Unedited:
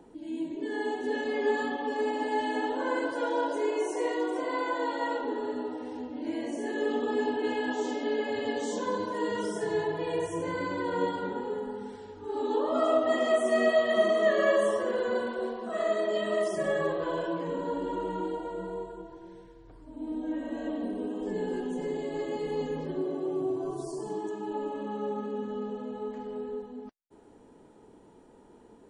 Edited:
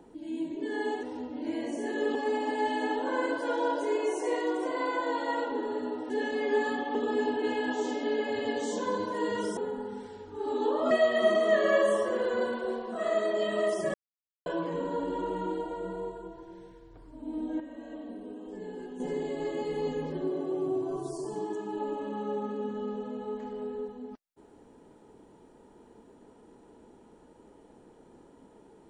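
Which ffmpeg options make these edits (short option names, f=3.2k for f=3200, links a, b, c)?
-filter_complex "[0:a]asplit=11[a][b][c][d][e][f][g][h][i][j][k];[a]atrim=end=1.032[l];[b]atrim=start=5.828:end=6.952[m];[c]atrim=start=1.878:end=5.832[n];[d]atrim=start=1.028:end=1.882[o];[e]atrim=start=6.948:end=9.572[p];[f]atrim=start=11.458:end=12.802[q];[g]atrim=start=13.648:end=16.68,asetpts=PTS-STARTPTS,afade=t=out:st=3.028:d=0.004:c=hsin[r];[h]atrim=start=16.68:end=17.2,asetpts=PTS-STARTPTS,volume=0[s];[i]atrim=start=17.2:end=20.342,asetpts=PTS-STARTPTS,afade=t=in:d=0.004:c=hsin[t];[j]atrim=start=20.338:end=21.742,asetpts=PTS-STARTPTS,volume=-8.5dB[u];[k]atrim=start=21.738[v];[l][m]acrossfade=d=0.004:c1=hsin:c2=hsin[w];[w][n]acrossfade=d=0.004:c1=hsin:c2=hsin[x];[x][o]acrossfade=d=0.004:c1=hsin:c2=hsin[y];[y][p]acrossfade=d=0.004:c1=hsin:c2=hsin[z];[z][q]acrossfade=d=0.004:c1=hsin:c2=hsin[aa];[r][s][t]concat=n=3:v=0:a=1[ab];[aa][ab]acrossfade=d=0.004:c1=hsin:c2=hsin[ac];[ac][u]acrossfade=d=0.004:c1=hsin:c2=hsin[ad];[ad][v]acrossfade=d=0.004:c1=hsin:c2=hsin"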